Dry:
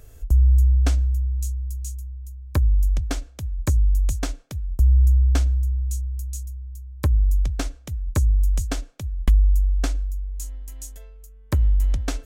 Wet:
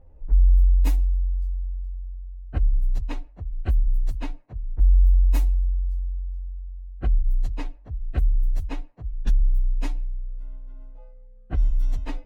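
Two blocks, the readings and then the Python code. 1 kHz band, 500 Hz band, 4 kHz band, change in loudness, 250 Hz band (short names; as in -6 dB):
-4.5 dB, -7.0 dB, -10.0 dB, -3.0 dB, -5.5 dB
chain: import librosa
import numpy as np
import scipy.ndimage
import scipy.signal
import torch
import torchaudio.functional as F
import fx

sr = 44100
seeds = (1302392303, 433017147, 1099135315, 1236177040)

y = fx.partial_stretch(x, sr, pct=126)
y = fx.env_lowpass(y, sr, base_hz=910.0, full_db=-15.5)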